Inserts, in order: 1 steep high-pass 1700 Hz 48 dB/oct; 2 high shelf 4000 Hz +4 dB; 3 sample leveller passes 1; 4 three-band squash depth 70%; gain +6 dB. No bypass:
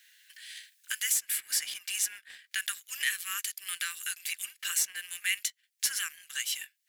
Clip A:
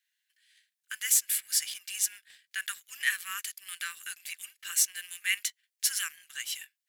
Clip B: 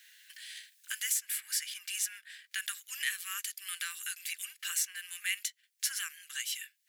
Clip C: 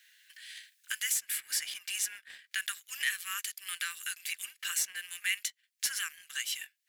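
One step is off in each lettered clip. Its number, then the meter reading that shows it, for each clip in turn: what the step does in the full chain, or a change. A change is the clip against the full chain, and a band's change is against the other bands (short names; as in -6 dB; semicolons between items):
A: 4, crest factor change +1.5 dB; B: 3, momentary loudness spread change +3 LU; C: 2, 8 kHz band -2.5 dB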